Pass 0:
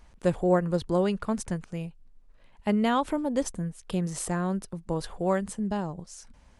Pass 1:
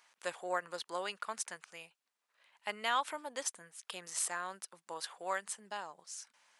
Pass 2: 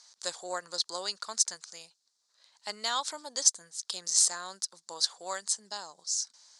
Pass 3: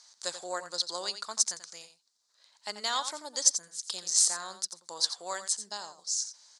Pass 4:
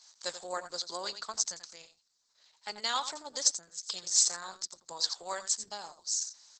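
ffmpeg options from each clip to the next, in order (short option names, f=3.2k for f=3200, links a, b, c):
-af "highpass=1.2k"
-af "lowpass=f=6.9k:t=q:w=1.8,highshelf=f=3.4k:t=q:w=3:g=8.5"
-af "aecho=1:1:87:0.282"
-ar 48000 -c:a libopus -b:a 10k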